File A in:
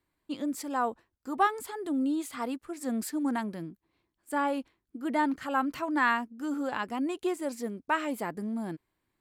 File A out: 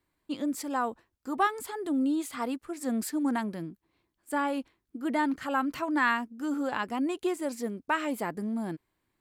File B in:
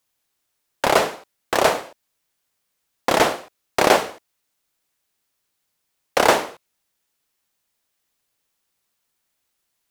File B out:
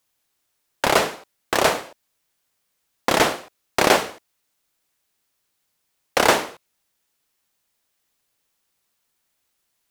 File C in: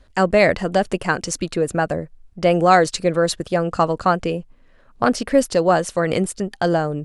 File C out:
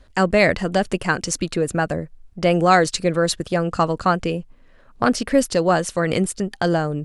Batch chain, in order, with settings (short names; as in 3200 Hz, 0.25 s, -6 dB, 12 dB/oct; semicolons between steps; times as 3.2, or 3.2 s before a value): dynamic EQ 650 Hz, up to -4 dB, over -30 dBFS, Q 0.78; gain +1.5 dB